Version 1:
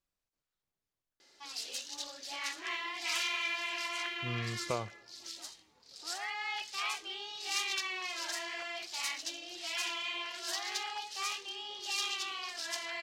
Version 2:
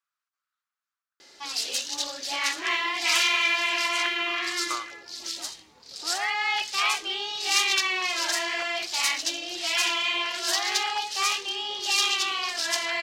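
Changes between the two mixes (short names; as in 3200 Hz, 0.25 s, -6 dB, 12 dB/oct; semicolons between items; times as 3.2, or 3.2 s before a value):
speech: add resonant high-pass 1300 Hz, resonance Q 4.7; background +11.5 dB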